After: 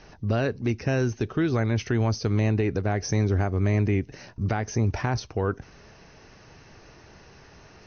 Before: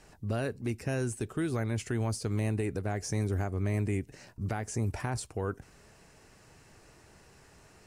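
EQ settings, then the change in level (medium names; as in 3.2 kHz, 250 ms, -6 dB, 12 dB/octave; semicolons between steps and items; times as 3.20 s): brick-wall FIR low-pass 6.4 kHz; +7.5 dB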